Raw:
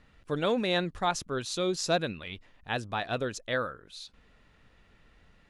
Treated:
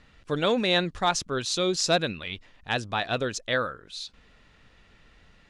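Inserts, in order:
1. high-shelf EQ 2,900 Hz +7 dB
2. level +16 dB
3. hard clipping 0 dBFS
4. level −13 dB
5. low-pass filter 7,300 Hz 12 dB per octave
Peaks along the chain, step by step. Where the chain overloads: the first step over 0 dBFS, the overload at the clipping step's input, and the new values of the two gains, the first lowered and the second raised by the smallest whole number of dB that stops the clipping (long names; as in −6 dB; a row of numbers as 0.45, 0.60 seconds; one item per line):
−11.0, +5.0, 0.0, −13.0, −12.5 dBFS
step 2, 5.0 dB
step 2 +11 dB, step 4 −8 dB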